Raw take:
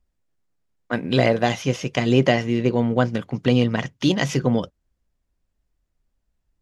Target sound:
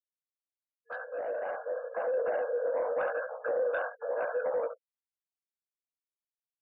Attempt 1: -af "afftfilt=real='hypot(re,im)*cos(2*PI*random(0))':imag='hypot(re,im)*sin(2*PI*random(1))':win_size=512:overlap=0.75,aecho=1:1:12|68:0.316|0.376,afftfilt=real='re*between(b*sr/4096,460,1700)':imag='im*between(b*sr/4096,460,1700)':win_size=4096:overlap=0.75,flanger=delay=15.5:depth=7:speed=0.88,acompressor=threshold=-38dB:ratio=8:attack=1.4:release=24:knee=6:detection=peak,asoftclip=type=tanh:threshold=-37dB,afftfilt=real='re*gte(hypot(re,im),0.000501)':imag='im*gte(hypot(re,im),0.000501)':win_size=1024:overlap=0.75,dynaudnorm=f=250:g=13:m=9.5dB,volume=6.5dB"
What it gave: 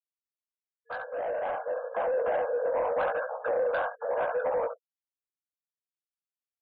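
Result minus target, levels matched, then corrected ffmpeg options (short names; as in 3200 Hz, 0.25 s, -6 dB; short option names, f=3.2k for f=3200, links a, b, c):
1000 Hz band +3.5 dB
-af "afftfilt=real='hypot(re,im)*cos(2*PI*random(0))':imag='hypot(re,im)*sin(2*PI*random(1))':win_size=512:overlap=0.75,aecho=1:1:12|68:0.316|0.376,afftfilt=real='re*between(b*sr/4096,460,1700)':imag='im*between(b*sr/4096,460,1700)':win_size=4096:overlap=0.75,flanger=delay=15.5:depth=7:speed=0.88,acompressor=threshold=-38dB:ratio=8:attack=1.4:release=24:knee=6:detection=peak,equalizer=f=880:t=o:w=1:g=-9.5,asoftclip=type=tanh:threshold=-37dB,afftfilt=real='re*gte(hypot(re,im),0.000501)':imag='im*gte(hypot(re,im),0.000501)':win_size=1024:overlap=0.75,dynaudnorm=f=250:g=13:m=9.5dB,volume=6.5dB"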